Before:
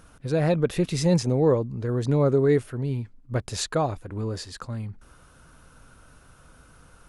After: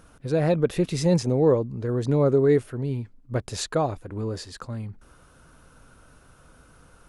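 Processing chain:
parametric band 410 Hz +3 dB 2 octaves
level −1.5 dB

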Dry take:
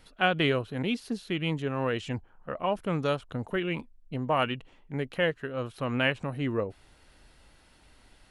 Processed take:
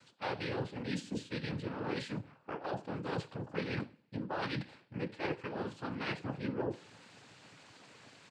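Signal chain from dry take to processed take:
reversed playback
downward compressor 12 to 1, threshold −38 dBFS, peak gain reduction 19.5 dB
reversed playback
pitch-shifted copies added −4 semitones −3 dB
coupled-rooms reverb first 0.39 s, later 1.8 s, from −28 dB, DRR 9.5 dB
cochlear-implant simulation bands 8
level +2.5 dB

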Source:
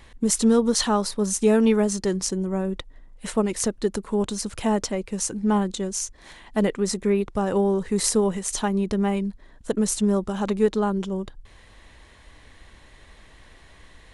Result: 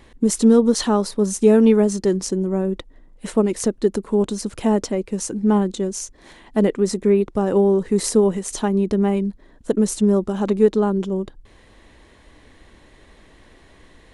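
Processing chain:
parametric band 320 Hz +8.5 dB 1.9 octaves
level −1.5 dB

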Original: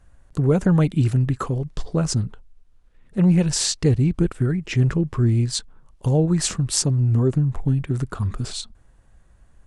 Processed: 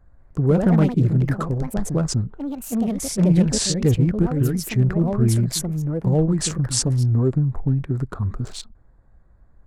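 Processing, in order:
adaptive Wiener filter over 15 samples
delay with pitch and tempo change per echo 197 ms, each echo +4 semitones, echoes 2, each echo −6 dB

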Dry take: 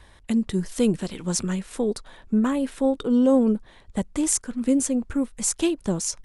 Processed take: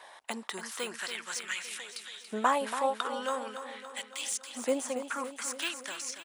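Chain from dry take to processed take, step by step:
de-essing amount 85%
auto-filter high-pass saw up 0.44 Hz 670–3,800 Hz
on a send: repeating echo 282 ms, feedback 58%, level −10 dB
on the sum: level +2 dB

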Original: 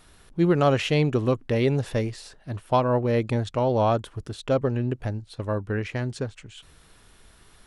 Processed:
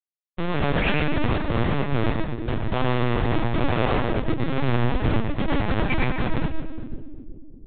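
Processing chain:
every frequency bin delayed by itself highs late, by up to 163 ms
reverb reduction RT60 0.76 s
parametric band 300 Hz +4.5 dB 0.37 octaves
hollow resonant body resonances 230/330/1,600/2,300 Hz, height 10 dB, ringing for 20 ms
in parallel at −10 dB: soft clipping −14.5 dBFS, distortion −8 dB
on the sum: bit-depth reduction 10 bits, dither none
comparator with hysteresis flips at −28.5 dBFS
echo with a time of its own for lows and highs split 420 Hz, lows 362 ms, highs 120 ms, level −8 dB
convolution reverb RT60 0.40 s, pre-delay 91 ms, DRR 2 dB
linear-prediction vocoder at 8 kHz pitch kept
level −6.5 dB

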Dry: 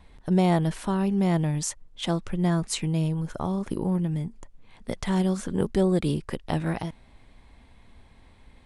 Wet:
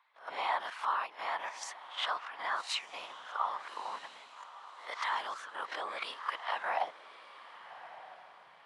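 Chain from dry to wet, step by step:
peak hold with a rise ahead of every peak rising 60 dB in 0.35 s
high-pass filter 42 Hz
mains-hum notches 50/100/150/200/250/300/350/400 Hz
noise gate −48 dBFS, range −12 dB
three-way crossover with the lows and the highs turned down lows −15 dB, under 520 Hz, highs −19 dB, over 4,700 Hz
random phases in short frames
in parallel at +2 dB: output level in coarse steps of 19 dB
on the sum: high-pass filter sweep 1,100 Hz → 160 Hz, 0:06.51–0:07.74
feedback delay with all-pass diffusion 1,214 ms, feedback 42%, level −14.5 dB
level −7 dB

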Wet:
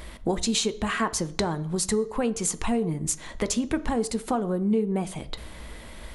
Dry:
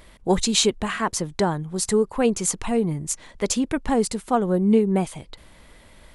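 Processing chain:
downward compressor 5 to 1, threshold −31 dBFS, peak gain reduction 16 dB
on a send: convolution reverb RT60 0.60 s, pre-delay 3 ms, DRR 11 dB
on the sum: level +6.5 dB

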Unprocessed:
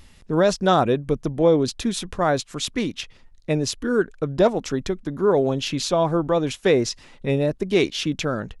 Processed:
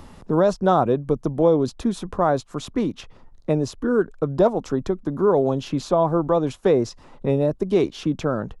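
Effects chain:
high shelf with overshoot 1,500 Hz −9 dB, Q 1.5
multiband upward and downward compressor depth 40%

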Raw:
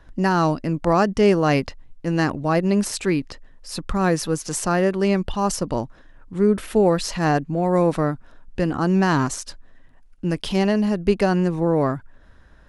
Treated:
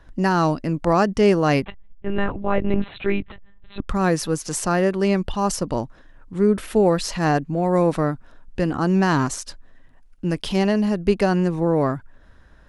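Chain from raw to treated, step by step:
0:01.62–0:03.89: one-pitch LPC vocoder at 8 kHz 200 Hz

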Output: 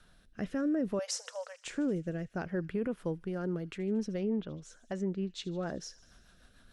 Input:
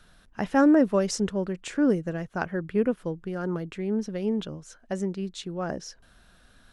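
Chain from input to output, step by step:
rotating-speaker cabinet horn 0.6 Hz, later 6.7 Hz, at 0:03.34
brickwall limiter −23 dBFS, peak gain reduction 10 dB
0:00.99–0:01.65: linear-phase brick-wall high-pass 460 Hz
on a send: delay with a high-pass on its return 76 ms, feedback 72%, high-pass 2,800 Hz, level −18 dB
0:04.17–0:05.63: on the sum: treble cut that deepens with the level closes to 2,100 Hz, closed at −26.5 dBFS
level −2 dB

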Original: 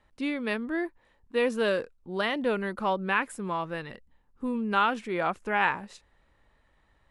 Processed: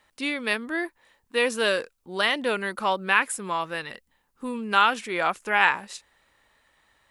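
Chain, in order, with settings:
spectral tilt +3 dB per octave
level +4 dB

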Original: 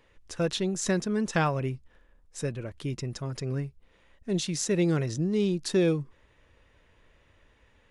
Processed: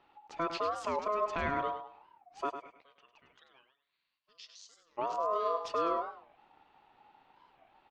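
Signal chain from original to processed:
high-frequency loss of the air 240 metres
brickwall limiter −22.5 dBFS, peak gain reduction 7 dB
0:02.49–0:04.98: resonant band-pass 1,200 Hz → 6,600 Hz, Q 5.3
repeating echo 102 ms, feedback 30%, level −9 dB
ring modulation 840 Hz
wow of a warped record 45 rpm, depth 250 cents

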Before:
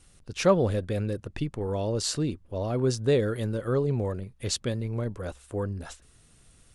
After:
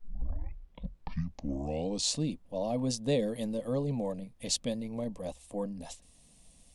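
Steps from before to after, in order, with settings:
turntable start at the beginning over 2.21 s
phaser with its sweep stopped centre 380 Hz, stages 6
background noise brown −68 dBFS

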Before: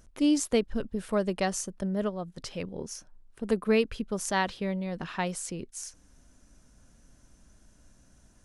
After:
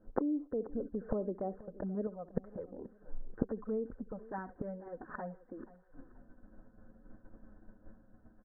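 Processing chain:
downward expander −46 dBFS
parametric band 410 Hz +14 dB 1.9 octaves, from 0:02.07 +6 dB
downward compressor 1.5 to 1, threshold −24 dBFS, peak gain reduction 6 dB
parametric band 1,100 Hz −2.5 dB 0.64 octaves
comb filter 3.9 ms, depth 33%
flutter between parallel walls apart 11.4 metres, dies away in 0.22 s
flanger swept by the level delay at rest 9.5 ms, full sweep at −18.5 dBFS
brickwall limiter −17.5 dBFS, peak gain reduction 10 dB
gate with flip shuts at −32 dBFS, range −27 dB
Butterworth low-pass 1,700 Hz 72 dB per octave
repeating echo 481 ms, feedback 31%, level −19 dB
level +16.5 dB

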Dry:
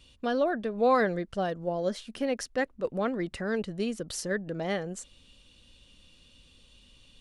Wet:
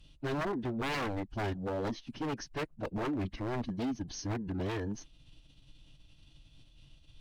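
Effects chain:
low-shelf EQ 250 Hz +10 dB
phase-vocoder pitch shift with formants kept −10 semitones
wave folding −24 dBFS
level −4.5 dB

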